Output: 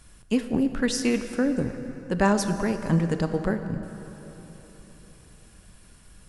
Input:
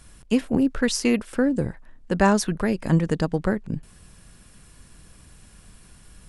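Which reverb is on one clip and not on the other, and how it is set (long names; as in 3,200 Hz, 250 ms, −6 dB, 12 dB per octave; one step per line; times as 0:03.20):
dense smooth reverb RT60 4 s, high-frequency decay 0.55×, DRR 8 dB
level −3 dB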